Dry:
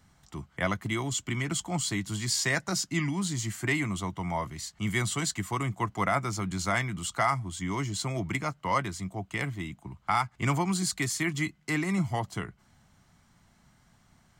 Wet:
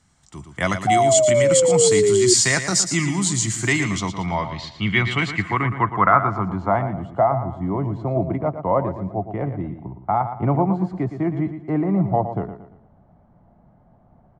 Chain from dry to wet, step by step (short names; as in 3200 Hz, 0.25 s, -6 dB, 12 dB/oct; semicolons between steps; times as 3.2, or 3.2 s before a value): 4.26–5.11 air absorption 110 m; on a send: feedback echo 0.115 s, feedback 38%, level -10 dB; 0.87–2.34 on the sum: painted sound fall 360–750 Hz -23 dBFS; AGC gain up to 8.5 dB; low-pass sweep 8100 Hz -> 650 Hz, 3.52–7.11; gain -1 dB